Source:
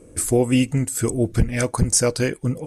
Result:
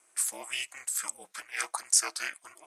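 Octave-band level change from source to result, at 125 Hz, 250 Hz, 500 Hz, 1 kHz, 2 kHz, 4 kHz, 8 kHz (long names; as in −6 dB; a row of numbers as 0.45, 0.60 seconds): below −40 dB, −36.5 dB, −28.0 dB, −7.5 dB, −5.0 dB, −4.0 dB, −4.5 dB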